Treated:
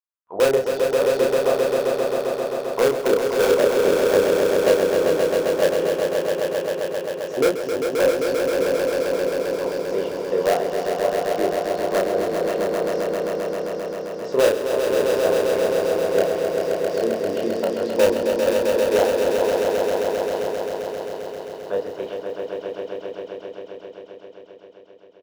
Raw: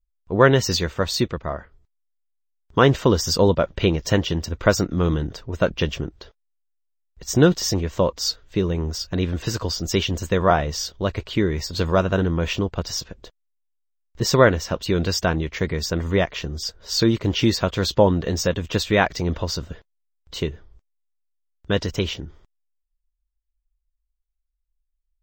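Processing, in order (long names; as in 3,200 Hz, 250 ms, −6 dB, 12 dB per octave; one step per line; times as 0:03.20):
envelope filter 500–1,100 Hz, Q 3.1, down, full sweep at −16 dBFS
high-pass filter 200 Hz 6 dB per octave
mains-hum notches 60/120/180/240/300 Hz
in parallel at −6.5 dB: wrap-around overflow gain 15.5 dB
on the sum: double-tracking delay 31 ms −3 dB
on a send: echo that builds up and dies away 132 ms, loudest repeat 5, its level −5.5 dB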